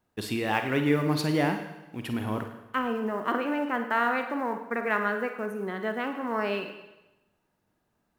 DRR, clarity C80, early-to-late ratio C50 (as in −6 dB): 6.0 dB, 10.0 dB, 7.0 dB